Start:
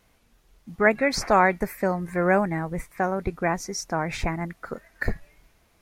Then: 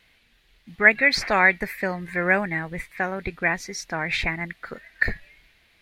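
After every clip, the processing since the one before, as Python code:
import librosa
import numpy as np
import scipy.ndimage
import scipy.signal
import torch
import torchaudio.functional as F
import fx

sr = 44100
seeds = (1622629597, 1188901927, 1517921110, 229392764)

y = fx.band_shelf(x, sr, hz=2700.0, db=13.0, octaves=1.7)
y = y * librosa.db_to_amplitude(-3.5)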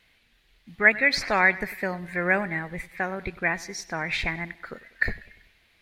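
y = fx.echo_feedback(x, sr, ms=97, feedback_pct=49, wet_db=-19.5)
y = y * librosa.db_to_amplitude(-2.5)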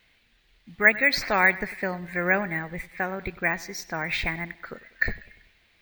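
y = np.repeat(scipy.signal.resample_poly(x, 1, 2), 2)[:len(x)]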